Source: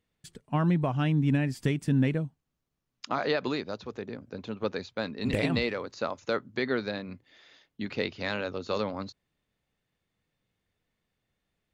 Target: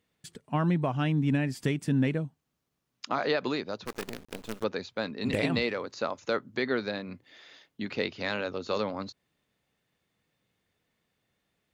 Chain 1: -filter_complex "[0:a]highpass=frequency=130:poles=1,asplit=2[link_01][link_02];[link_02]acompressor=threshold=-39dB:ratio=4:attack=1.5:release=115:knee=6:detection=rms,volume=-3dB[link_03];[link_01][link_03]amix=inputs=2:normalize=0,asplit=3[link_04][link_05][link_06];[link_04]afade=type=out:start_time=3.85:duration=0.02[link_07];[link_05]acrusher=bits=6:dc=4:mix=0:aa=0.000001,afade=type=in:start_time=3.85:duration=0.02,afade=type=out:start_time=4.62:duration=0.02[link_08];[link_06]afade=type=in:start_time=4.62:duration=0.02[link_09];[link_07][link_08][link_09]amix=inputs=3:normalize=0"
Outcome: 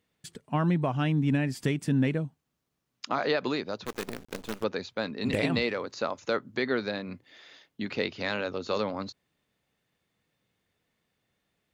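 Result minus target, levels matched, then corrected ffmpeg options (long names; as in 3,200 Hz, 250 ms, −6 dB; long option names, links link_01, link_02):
downward compressor: peak gain reduction −8 dB
-filter_complex "[0:a]highpass=frequency=130:poles=1,asplit=2[link_01][link_02];[link_02]acompressor=threshold=-49.5dB:ratio=4:attack=1.5:release=115:knee=6:detection=rms,volume=-3dB[link_03];[link_01][link_03]amix=inputs=2:normalize=0,asplit=3[link_04][link_05][link_06];[link_04]afade=type=out:start_time=3.85:duration=0.02[link_07];[link_05]acrusher=bits=6:dc=4:mix=0:aa=0.000001,afade=type=in:start_time=3.85:duration=0.02,afade=type=out:start_time=4.62:duration=0.02[link_08];[link_06]afade=type=in:start_time=4.62:duration=0.02[link_09];[link_07][link_08][link_09]amix=inputs=3:normalize=0"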